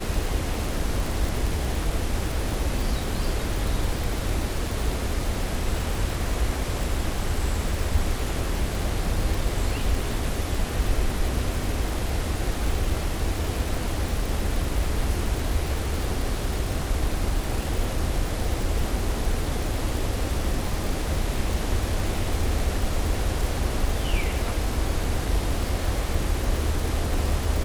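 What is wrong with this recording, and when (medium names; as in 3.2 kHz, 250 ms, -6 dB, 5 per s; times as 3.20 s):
crackle 160 per s -28 dBFS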